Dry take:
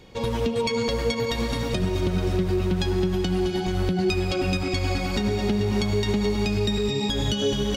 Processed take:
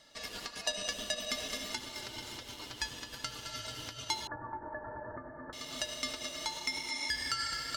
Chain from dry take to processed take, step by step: Chebyshev high-pass 1.2 kHz, order 5; ring modulator 1.6 kHz; 4.27–5.53 s: Chebyshev low-pass 1.8 kHz, order 8

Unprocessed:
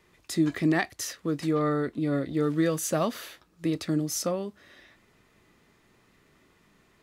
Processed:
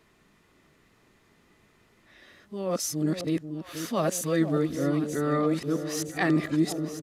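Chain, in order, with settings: reverse the whole clip; resampled via 32 kHz; on a send: echo whose repeats swap between lows and highs 484 ms, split 800 Hz, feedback 76%, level -9 dB

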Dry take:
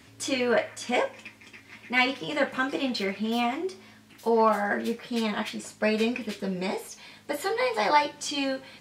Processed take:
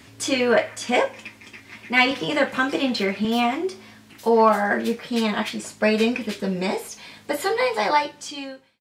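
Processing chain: fade out at the end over 1.28 s; 2.11–3.25 s: three bands compressed up and down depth 40%; trim +5.5 dB

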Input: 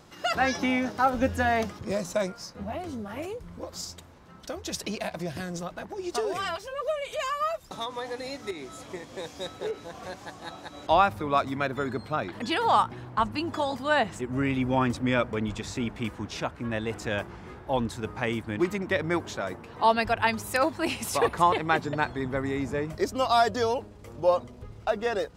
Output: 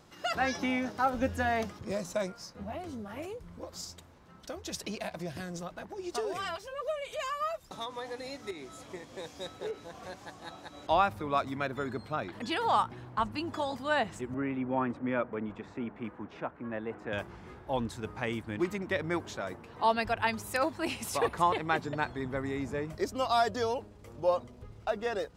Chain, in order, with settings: 14.34–17.13 s: three-band isolator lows -13 dB, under 160 Hz, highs -24 dB, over 2.2 kHz; trim -5 dB

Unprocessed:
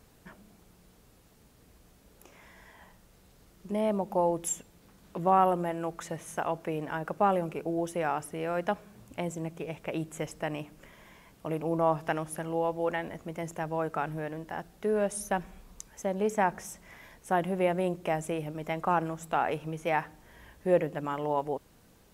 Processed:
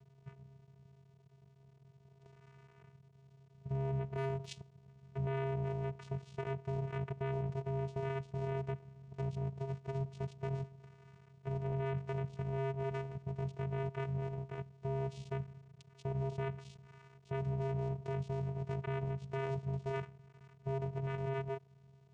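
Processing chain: cycle switcher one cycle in 3, muted; vocoder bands 4, square 135 Hz; peak limiter -26.5 dBFS, peak gain reduction 12 dB; 4.05–4.46 s: sliding maximum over 3 samples; trim -1.5 dB

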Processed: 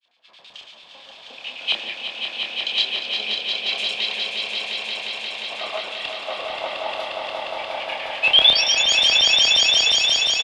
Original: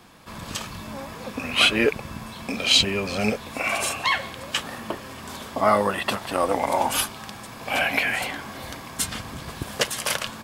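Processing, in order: frequency weighting D; compression 1.5:1, threshold -31 dBFS, peak gain reduction 10.5 dB; painted sound rise, 8.21–8.84 s, 2.5–7 kHz -12 dBFS; granulator, pitch spread up and down by 0 st; LFO band-pass square 9 Hz 700–3300 Hz; doubling 28 ms -5 dB; echo with a slow build-up 177 ms, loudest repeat 5, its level -4 dB; three bands expanded up and down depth 40%

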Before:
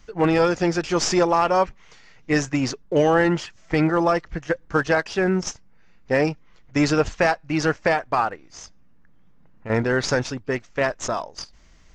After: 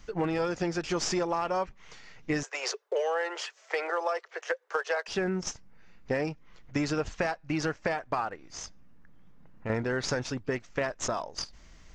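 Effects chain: 2.43–5.08 s: steep high-pass 400 Hz 72 dB/octave; compression 4:1, threshold -28 dBFS, peak gain reduction 12 dB

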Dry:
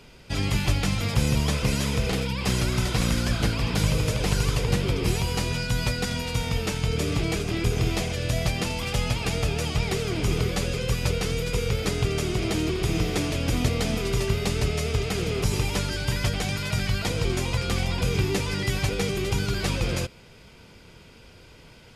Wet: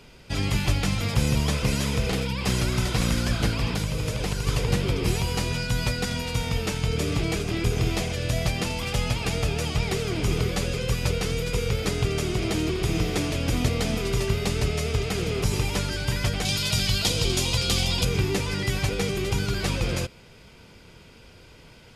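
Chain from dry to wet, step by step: 3.69–4.47 s: compression, threshold -23 dBFS, peak gain reduction 7 dB; 16.45–18.05 s: resonant high shelf 2.6 kHz +7.5 dB, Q 1.5

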